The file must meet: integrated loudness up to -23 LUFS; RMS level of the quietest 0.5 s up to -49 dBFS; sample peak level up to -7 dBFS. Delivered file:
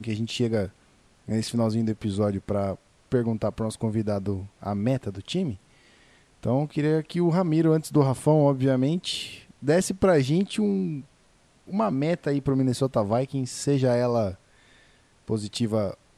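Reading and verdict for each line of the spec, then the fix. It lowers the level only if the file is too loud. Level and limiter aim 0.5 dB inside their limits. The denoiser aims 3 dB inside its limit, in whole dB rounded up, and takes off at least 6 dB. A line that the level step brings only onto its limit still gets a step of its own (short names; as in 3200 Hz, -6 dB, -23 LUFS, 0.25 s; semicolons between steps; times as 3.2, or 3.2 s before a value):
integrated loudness -25.5 LUFS: OK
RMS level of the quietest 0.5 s -60 dBFS: OK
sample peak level -7.5 dBFS: OK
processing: none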